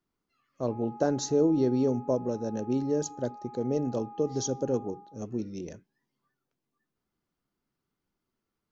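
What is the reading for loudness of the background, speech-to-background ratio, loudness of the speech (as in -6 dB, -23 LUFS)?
-47.0 LUFS, 17.5 dB, -29.5 LUFS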